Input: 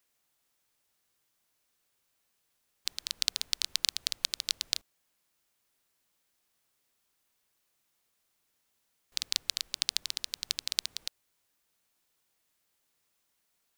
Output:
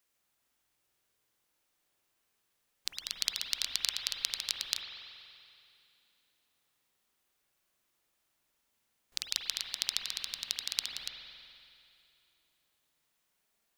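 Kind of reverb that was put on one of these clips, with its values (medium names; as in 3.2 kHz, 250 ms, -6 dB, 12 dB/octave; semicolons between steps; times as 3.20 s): spring tank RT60 2.6 s, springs 47 ms, chirp 75 ms, DRR 0.5 dB; trim -2.5 dB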